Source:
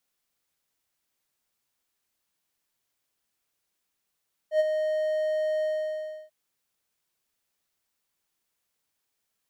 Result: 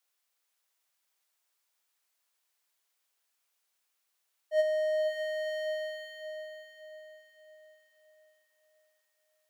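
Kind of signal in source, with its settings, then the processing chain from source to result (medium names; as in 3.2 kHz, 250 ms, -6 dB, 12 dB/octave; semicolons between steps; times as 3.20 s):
ADSR triangle 620 Hz, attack 87 ms, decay 29 ms, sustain -7 dB, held 1.12 s, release 669 ms -15 dBFS
high-pass 570 Hz 12 dB/octave; on a send: echo that smears into a reverb 523 ms, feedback 44%, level -6.5 dB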